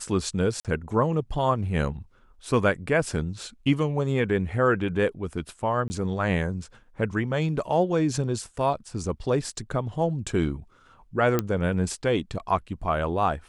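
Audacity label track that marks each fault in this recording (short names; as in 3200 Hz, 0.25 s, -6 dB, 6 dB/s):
0.600000	0.650000	gap 47 ms
5.880000	5.900000	gap 20 ms
11.390000	11.390000	pop -9 dBFS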